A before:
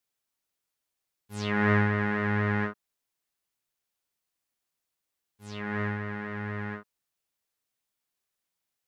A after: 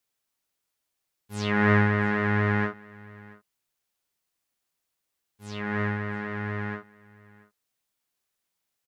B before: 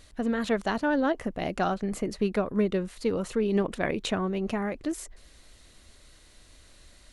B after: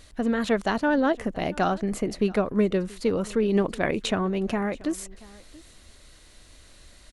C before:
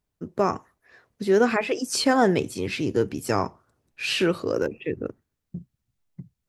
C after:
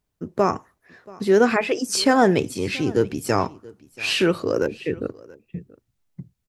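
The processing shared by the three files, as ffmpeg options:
-af "aecho=1:1:681:0.075,volume=3dB"

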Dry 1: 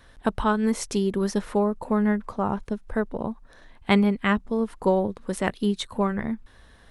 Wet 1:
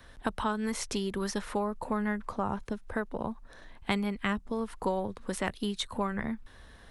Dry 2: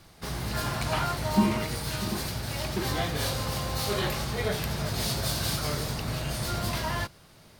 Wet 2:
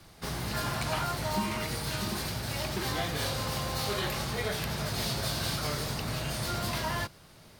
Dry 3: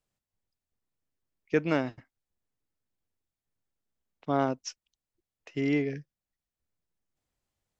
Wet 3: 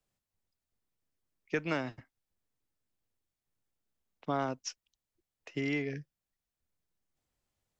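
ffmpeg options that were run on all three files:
-filter_complex "[0:a]acrossover=split=97|810|5000[a][b][c][d];[a]acompressor=threshold=-42dB:ratio=4[e];[b]acompressor=threshold=-33dB:ratio=4[f];[c]acompressor=threshold=-32dB:ratio=4[g];[d]acompressor=threshold=-39dB:ratio=4[h];[e][f][g][h]amix=inputs=4:normalize=0"

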